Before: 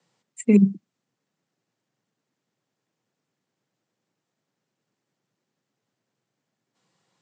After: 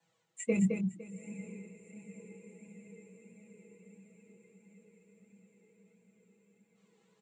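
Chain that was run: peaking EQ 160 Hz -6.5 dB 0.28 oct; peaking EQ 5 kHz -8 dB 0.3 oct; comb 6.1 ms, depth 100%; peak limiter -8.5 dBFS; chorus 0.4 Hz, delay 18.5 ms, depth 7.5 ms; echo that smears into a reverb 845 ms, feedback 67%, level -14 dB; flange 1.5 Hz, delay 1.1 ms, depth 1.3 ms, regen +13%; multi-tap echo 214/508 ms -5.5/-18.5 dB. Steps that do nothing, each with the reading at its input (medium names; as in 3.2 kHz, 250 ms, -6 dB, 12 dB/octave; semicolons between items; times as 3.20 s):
none, every step acts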